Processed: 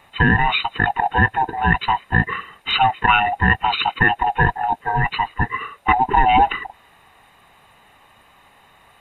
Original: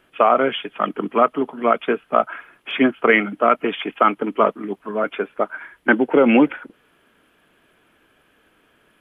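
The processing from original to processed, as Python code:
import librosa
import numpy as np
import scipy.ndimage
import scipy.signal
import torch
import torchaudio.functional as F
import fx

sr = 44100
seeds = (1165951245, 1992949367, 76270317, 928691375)

p1 = fx.band_swap(x, sr, width_hz=500)
p2 = fx.over_compress(p1, sr, threshold_db=-25.0, ratio=-1.0)
p3 = p1 + (p2 * librosa.db_to_amplitude(-2.0))
y = p3 * librosa.db_to_amplitude(-1.0)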